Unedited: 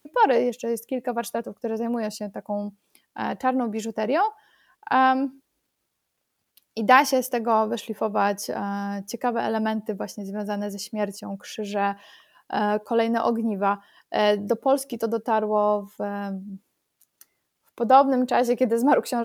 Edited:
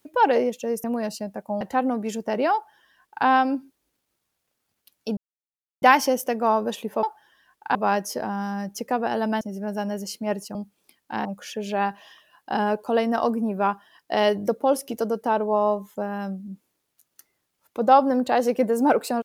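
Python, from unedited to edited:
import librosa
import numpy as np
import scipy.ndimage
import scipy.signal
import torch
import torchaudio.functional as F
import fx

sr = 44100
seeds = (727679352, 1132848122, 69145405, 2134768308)

y = fx.edit(x, sr, fx.cut(start_s=0.84, length_s=1.0),
    fx.move(start_s=2.61, length_s=0.7, to_s=11.27),
    fx.duplicate(start_s=4.24, length_s=0.72, to_s=8.08),
    fx.insert_silence(at_s=6.87, length_s=0.65),
    fx.cut(start_s=9.74, length_s=0.39), tone=tone)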